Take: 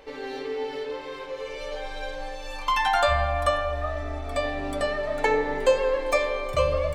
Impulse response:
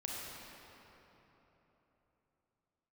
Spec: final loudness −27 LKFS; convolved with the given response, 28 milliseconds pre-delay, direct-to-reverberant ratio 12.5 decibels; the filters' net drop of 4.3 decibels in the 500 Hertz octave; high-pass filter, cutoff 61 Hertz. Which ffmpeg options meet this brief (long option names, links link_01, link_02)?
-filter_complex "[0:a]highpass=61,equalizer=frequency=500:width_type=o:gain=-5,asplit=2[link_01][link_02];[1:a]atrim=start_sample=2205,adelay=28[link_03];[link_02][link_03]afir=irnorm=-1:irlink=0,volume=-14dB[link_04];[link_01][link_04]amix=inputs=2:normalize=0,volume=1.5dB"